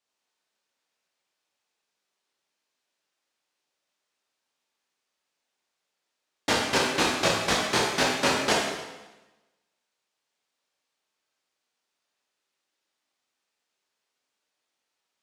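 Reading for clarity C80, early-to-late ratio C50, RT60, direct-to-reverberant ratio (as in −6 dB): 4.0 dB, 1.5 dB, 1.1 s, −3.5 dB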